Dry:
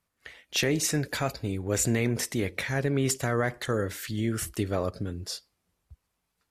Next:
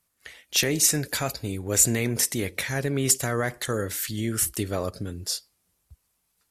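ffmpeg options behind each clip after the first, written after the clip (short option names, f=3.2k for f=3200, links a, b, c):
-af "equalizer=f=12k:t=o:w=1.9:g=12"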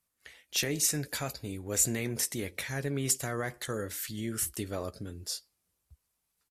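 -filter_complex "[0:a]asplit=2[a][b];[b]adelay=14,volume=-13dB[c];[a][c]amix=inputs=2:normalize=0,volume=-7.5dB"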